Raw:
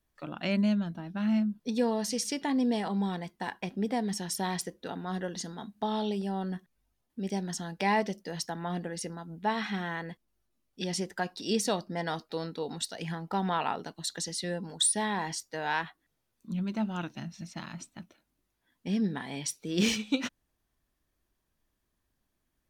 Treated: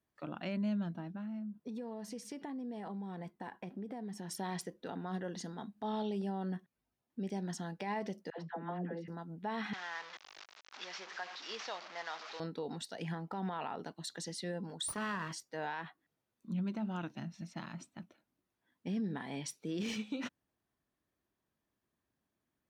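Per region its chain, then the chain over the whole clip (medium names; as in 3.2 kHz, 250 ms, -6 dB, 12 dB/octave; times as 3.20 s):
1.08–4.31 s: peaking EQ 4.4 kHz -6 dB 2.1 oct + compression 10:1, threshold -36 dBFS
8.30–9.08 s: band-pass 150–6900 Hz + distance through air 370 m + phase dispersion lows, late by 85 ms, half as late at 670 Hz
9.73–12.40 s: one-bit delta coder 32 kbps, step -33 dBFS + high-pass 970 Hz
14.88–15.33 s: comb filter that takes the minimum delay 0.66 ms + peaking EQ 1.2 kHz +9 dB 0.63 oct
whole clip: high-pass 110 Hz 12 dB/octave; treble shelf 3 kHz -8.5 dB; peak limiter -27.5 dBFS; trim -2.5 dB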